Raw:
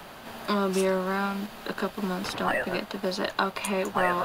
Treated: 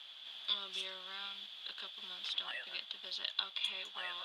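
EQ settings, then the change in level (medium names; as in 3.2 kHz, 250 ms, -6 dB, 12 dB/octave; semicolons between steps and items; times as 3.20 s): band-pass filter 3.4 kHz, Q 15; +10.5 dB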